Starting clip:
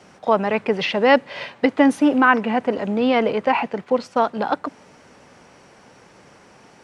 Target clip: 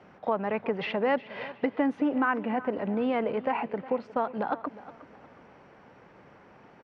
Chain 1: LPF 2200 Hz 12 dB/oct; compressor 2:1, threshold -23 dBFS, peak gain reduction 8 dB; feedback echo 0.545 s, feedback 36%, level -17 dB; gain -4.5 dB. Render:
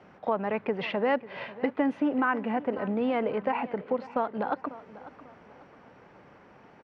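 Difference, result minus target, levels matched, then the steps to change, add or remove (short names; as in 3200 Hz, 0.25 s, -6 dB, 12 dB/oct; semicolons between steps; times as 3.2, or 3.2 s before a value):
echo 0.184 s late
change: feedback echo 0.361 s, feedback 36%, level -17 dB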